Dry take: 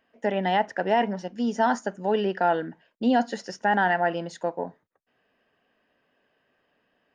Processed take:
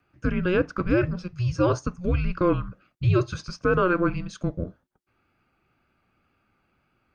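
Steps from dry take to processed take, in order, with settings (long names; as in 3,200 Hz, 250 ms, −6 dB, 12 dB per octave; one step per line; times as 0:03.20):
frequency shifter −360 Hz
tape wow and flutter 22 cents
level +1 dB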